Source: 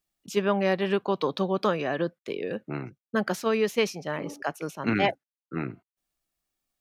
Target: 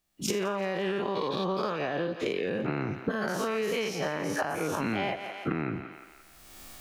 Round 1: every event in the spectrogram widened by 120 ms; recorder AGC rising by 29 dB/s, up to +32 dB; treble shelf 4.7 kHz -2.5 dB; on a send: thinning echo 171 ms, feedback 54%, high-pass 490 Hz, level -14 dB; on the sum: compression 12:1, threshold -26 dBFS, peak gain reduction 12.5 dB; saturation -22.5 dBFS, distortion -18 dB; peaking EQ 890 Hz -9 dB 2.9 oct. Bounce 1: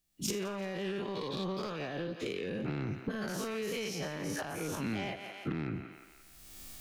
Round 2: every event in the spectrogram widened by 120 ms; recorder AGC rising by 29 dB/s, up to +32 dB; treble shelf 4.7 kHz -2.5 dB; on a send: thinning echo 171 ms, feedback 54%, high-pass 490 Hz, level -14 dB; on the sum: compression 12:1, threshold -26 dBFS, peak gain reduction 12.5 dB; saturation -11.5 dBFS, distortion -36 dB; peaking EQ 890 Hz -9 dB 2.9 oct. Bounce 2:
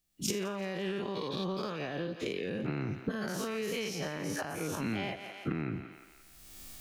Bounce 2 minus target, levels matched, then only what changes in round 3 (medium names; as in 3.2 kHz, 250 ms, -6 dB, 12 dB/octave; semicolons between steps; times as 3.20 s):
1 kHz band -3.5 dB
remove: peaking EQ 890 Hz -9 dB 2.9 oct